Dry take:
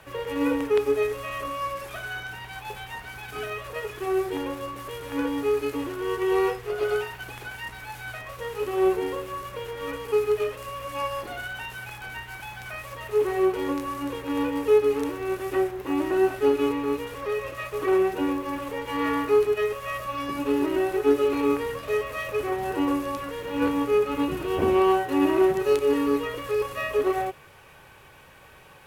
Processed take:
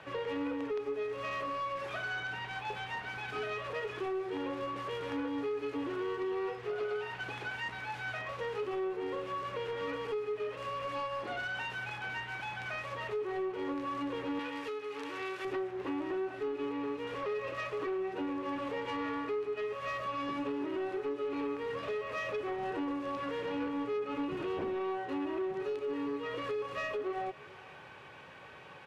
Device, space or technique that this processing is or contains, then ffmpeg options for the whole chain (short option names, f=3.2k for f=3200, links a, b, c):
AM radio: -filter_complex "[0:a]highpass=130,lowpass=4.1k,acompressor=threshold=-31dB:ratio=6,asoftclip=type=tanh:threshold=-29.5dB,asettb=1/sr,asplit=3[a][b][c];[a]atrim=end=14.394[d];[b]atrim=start=14.39:end=15.45,asetpts=PTS-STARTPTS,afade=t=in:d=0.004:c=qsin,afade=t=out:st=1.056:d=0.004:c=qsin,tiltshelf=f=890:g=-8.5[e];[c]atrim=start=15.446[f];[d][e]acrossfade=d=0.004:c1=hsin:c2=qsin[g];[g][f]acrossfade=d=0.004:c1=qsin:c2=hsin,aecho=1:1:442:0.0708"